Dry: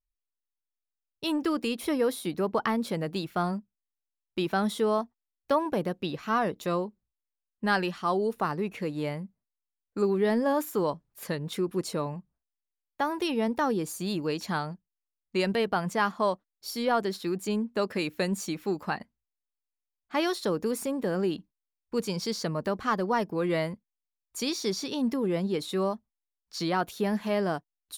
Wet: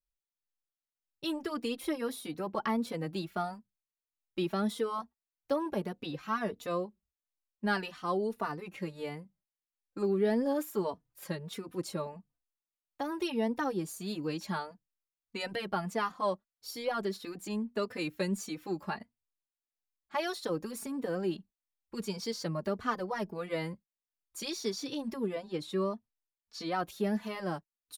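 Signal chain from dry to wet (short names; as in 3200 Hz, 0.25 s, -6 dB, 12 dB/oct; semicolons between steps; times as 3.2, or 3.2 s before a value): 25.34–26.72 high shelf 8200 Hz -9 dB; endless flanger 3.3 ms +1.6 Hz; gain -2.5 dB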